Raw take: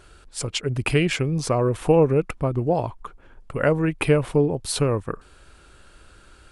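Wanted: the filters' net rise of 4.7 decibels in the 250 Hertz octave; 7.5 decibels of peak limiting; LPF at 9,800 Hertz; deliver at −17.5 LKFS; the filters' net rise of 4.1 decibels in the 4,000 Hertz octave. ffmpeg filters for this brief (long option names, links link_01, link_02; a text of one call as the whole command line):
ffmpeg -i in.wav -af "lowpass=9800,equalizer=frequency=250:width_type=o:gain=7,equalizer=frequency=4000:width_type=o:gain=5.5,volume=4.5dB,alimiter=limit=-6dB:level=0:latency=1" out.wav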